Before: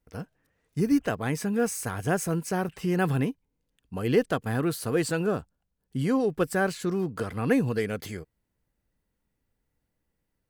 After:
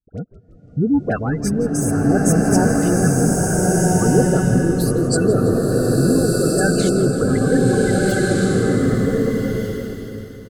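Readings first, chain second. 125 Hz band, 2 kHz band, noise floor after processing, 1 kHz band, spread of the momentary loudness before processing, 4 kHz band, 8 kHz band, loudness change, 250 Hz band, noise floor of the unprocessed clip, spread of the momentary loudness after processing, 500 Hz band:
+13.5 dB, +8.5 dB, −44 dBFS, +8.5 dB, 13 LU, +10.5 dB, +15.0 dB, +10.5 dB, +12.0 dB, −80 dBFS, 7 LU, +11.0 dB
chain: leveller curve on the samples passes 3
high-shelf EQ 5,400 Hz +3.5 dB
gate on every frequency bin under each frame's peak −15 dB strong
all-pass dispersion highs, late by 70 ms, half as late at 1,300 Hz
rotating-speaker cabinet horn 0.7 Hz, later 7.5 Hz, at 0:06.93
on a send: echo with shifted repeats 167 ms, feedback 64%, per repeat −76 Hz, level −16 dB
on the sum: slow-attack reverb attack 1,580 ms, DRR −4 dB

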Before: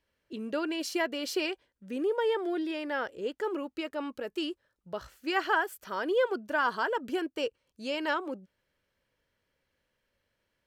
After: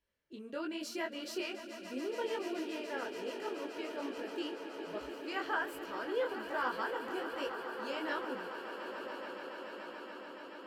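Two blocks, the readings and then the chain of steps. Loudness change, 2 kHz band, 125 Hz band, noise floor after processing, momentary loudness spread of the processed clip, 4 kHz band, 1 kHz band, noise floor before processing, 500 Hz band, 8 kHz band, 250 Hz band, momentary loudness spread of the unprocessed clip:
−7.5 dB, −6.5 dB, can't be measured, −49 dBFS, 9 LU, −6.5 dB, −6.0 dB, −80 dBFS, −6.5 dB, −6.0 dB, −6.5 dB, 13 LU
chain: on a send: echo that builds up and dies away 143 ms, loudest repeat 8, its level −14 dB
on the sum: micro pitch shift up and down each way 42 cents
level −4.5 dB

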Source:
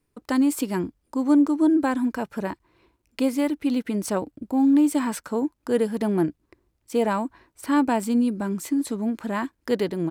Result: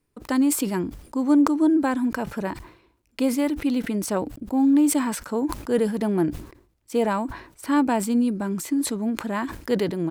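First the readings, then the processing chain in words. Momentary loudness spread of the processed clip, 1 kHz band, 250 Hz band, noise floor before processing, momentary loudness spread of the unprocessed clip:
10 LU, +0.5 dB, +0.5 dB, −74 dBFS, 10 LU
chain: level that may fall only so fast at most 99 dB per second

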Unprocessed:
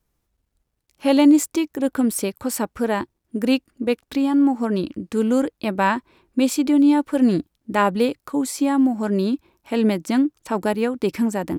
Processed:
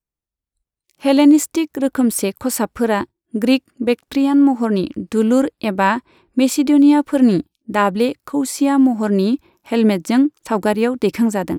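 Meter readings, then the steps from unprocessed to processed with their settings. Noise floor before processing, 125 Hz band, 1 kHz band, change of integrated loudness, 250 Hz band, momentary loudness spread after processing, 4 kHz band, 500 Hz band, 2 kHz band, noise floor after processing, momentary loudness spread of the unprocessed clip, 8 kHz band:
−75 dBFS, +4.5 dB, +3.5 dB, +4.0 dB, +4.0 dB, 9 LU, +4.0 dB, +4.0 dB, +4.0 dB, below −85 dBFS, 9 LU, +4.0 dB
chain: noise reduction from a noise print of the clip's start 18 dB
automatic gain control gain up to 5 dB

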